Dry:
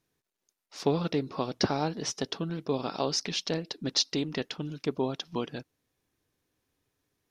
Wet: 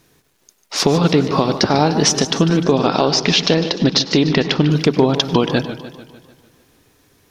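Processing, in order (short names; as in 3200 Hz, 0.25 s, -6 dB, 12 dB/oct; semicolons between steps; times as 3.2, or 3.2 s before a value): compressor, threshold -33 dBFS, peak gain reduction 12.5 dB; 2.62–4.71 LPF 4800 Hz 12 dB/oct; reverb RT60 0.35 s, pre-delay 92 ms, DRR 14.5 dB; maximiser +24.5 dB; warbling echo 0.149 s, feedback 56%, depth 126 cents, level -13 dB; gain -1.5 dB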